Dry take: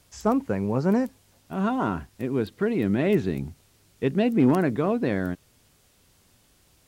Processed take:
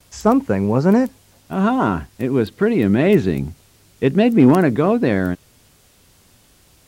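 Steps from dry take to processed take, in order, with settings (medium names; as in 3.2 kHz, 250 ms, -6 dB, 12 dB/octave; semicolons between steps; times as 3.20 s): gate with hold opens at -53 dBFS; trim +8 dB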